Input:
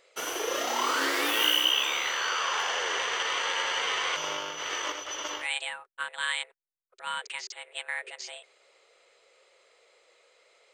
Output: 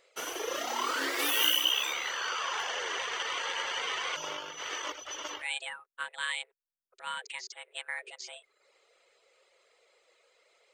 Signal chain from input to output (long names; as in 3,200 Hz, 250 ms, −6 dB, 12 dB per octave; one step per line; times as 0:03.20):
reverb reduction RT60 0.61 s
0:01.18–0:01.92: high-shelf EQ 4,600 Hz → 7,900 Hz +9 dB
level −3 dB